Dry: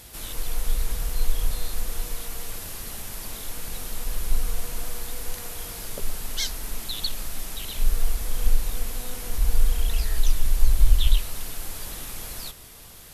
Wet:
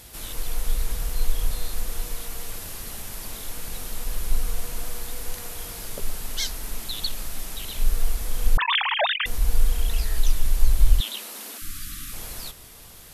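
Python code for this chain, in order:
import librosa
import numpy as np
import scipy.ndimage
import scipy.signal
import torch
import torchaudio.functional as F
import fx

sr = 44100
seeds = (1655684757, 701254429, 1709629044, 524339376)

y = fx.sine_speech(x, sr, at=(8.57, 9.26))
y = fx.spec_erase(y, sr, start_s=11.58, length_s=0.55, low_hz=340.0, high_hz=1100.0)
y = fx.steep_highpass(y, sr, hz=200.0, slope=96, at=(11.0, 11.62))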